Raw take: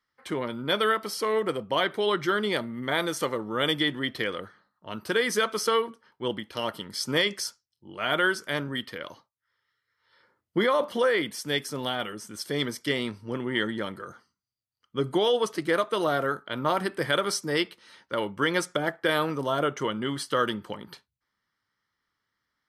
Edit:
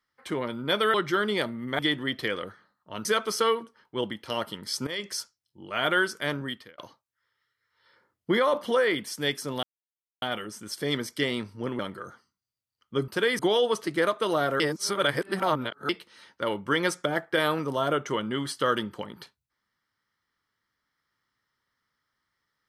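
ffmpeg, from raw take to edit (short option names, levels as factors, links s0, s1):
-filter_complex "[0:a]asplit=12[s0][s1][s2][s3][s4][s5][s6][s7][s8][s9][s10][s11];[s0]atrim=end=0.942[s12];[s1]atrim=start=2.088:end=2.942[s13];[s2]atrim=start=3.748:end=5.012[s14];[s3]atrim=start=5.318:end=7.14,asetpts=PTS-STARTPTS,afade=t=out:st=1.818:d=0.004:c=hsin:silence=0.133352[s15];[s4]atrim=start=7.14:end=9.05,asetpts=PTS-STARTPTS,afade=t=in:d=0.33:silence=0.133352,afade=t=out:st=1.54:d=0.37[s16];[s5]atrim=start=9.05:end=11.9,asetpts=PTS-STARTPTS,afade=t=in:d=0.004:c=hsin,afade=t=out:st=2.846:d=0.004:c=hsin,apad=pad_dur=0.59[s17];[s6]atrim=start=11.9:end=13.472,asetpts=PTS-STARTPTS,afade=t=in:d=0.004:c=hsin[s18];[s7]atrim=start=13.808:end=15.102[s19];[s8]atrim=start=5.008:end=5.322[s20];[s9]atrim=start=15.098:end=16.312[s21];[s10]atrim=start=16.308:end=17.602,asetpts=PTS-STARTPTS,areverse[s22];[s11]atrim=start=17.598[s23];[s12][s13]acrossfade=d=0.004:c1=hsin:c2=hsin[s24];[s24][s14]acrossfade=d=0.004:c1=hsin:c2=hsin[s25];[s15][s16][s17][s18]concat=n=4:v=0:a=1[s26];[s25][s26]acrossfade=d=0.004:c1=hsin:c2=hsin[s27];[s27][s19]acrossfade=d=0.004:c1=hsin:c2=hsin[s28];[s28][s20]acrossfade=d=0.004:c1=hsin:c2=hsin[s29];[s29][s21]acrossfade=d=0.004:c1=hsin:c2=hsin[s30];[s30][s22]acrossfade=d=0.004:c1=hsin:c2=hsin[s31];[s31][s23]acrossfade=d=0.004:c1=hsin:c2=hsin"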